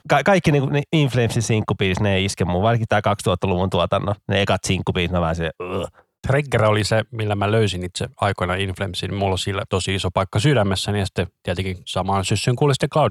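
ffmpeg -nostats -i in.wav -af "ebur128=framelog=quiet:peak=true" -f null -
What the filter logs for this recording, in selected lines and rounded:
Integrated loudness:
  I:         -20.4 LUFS
  Threshold: -30.5 LUFS
Loudness range:
  LRA:         2.2 LU
  Threshold: -40.8 LUFS
  LRA low:   -21.8 LUFS
  LRA high:  -19.6 LUFS
True peak:
  Peak:       -5.3 dBFS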